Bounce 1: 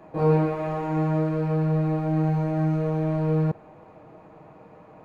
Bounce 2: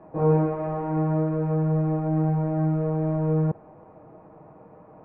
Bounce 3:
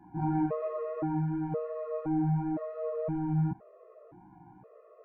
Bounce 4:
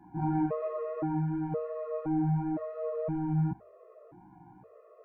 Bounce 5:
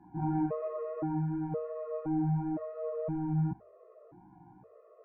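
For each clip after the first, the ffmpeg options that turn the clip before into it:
-af "lowpass=1300"
-af "flanger=delay=15.5:depth=2.1:speed=2.8,afftfilt=real='re*gt(sin(2*PI*0.97*pts/sr)*(1-2*mod(floor(b*sr/1024/350),2)),0)':imag='im*gt(sin(2*PI*0.97*pts/sr)*(1-2*mod(floor(b*sr/1024/350),2)),0)':win_size=1024:overlap=0.75"
-af "bandreject=f=50:t=h:w=6,bandreject=f=100:t=h:w=6"
-af "lowpass=f=1600:p=1,volume=0.841"

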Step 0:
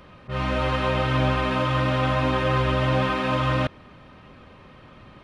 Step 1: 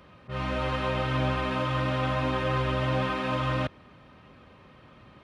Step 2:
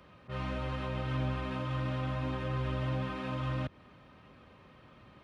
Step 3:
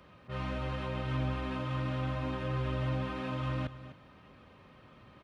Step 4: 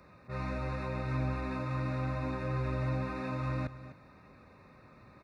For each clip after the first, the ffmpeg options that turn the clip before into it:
-af "highpass=47,volume=0.562"
-filter_complex "[0:a]acrossover=split=280[s0][s1];[s1]acompressor=threshold=0.02:ratio=6[s2];[s0][s2]amix=inputs=2:normalize=0,volume=0.631"
-af "aecho=1:1:250:0.2"
-af "asuperstop=centerf=3100:order=8:qfactor=3.5"

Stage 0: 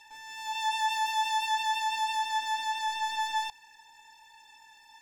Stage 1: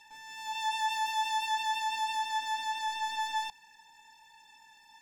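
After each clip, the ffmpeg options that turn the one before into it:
-af "equalizer=f=190:t=o:w=0.7:g=9.5,volume=0.75"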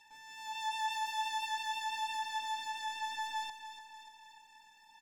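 -af "aecho=1:1:293|586|879|1172|1465|1758|2051:0.299|0.173|0.1|0.0582|0.0338|0.0196|0.0114,volume=0.562"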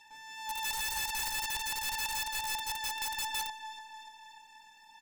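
-af "aeval=exprs='(mod(44.7*val(0)+1,2)-1)/44.7':c=same,volume=1.58"

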